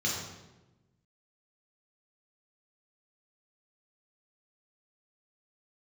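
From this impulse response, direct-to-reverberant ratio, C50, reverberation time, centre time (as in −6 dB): −4.5 dB, 1.5 dB, 1.1 s, 59 ms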